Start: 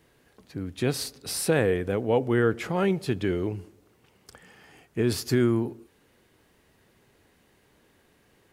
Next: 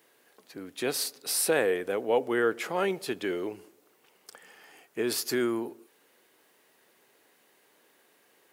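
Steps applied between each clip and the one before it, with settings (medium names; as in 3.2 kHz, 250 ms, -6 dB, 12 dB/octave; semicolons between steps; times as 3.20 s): high-pass 390 Hz 12 dB/octave; treble shelf 12 kHz +10.5 dB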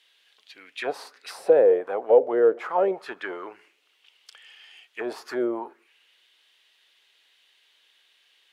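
in parallel at -6.5 dB: one-sided clip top -28.5 dBFS; on the sum: auto-wah 530–3400 Hz, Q 3.3, down, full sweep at -20.5 dBFS; trim +9 dB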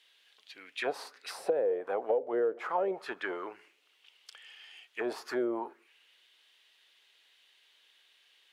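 compression 6:1, threshold -24 dBFS, peak gain reduction 12.5 dB; trim -2.5 dB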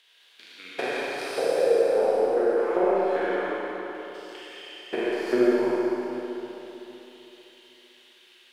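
spectrogram pixelated in time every 200 ms; transient shaper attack +8 dB, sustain -6 dB; Schroeder reverb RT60 3.5 s, combs from 32 ms, DRR -6 dB; trim +4 dB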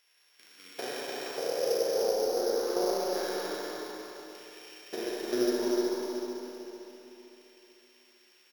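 sorted samples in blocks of 8 samples; on a send: delay 301 ms -4.5 dB; on the sum: trim -8 dB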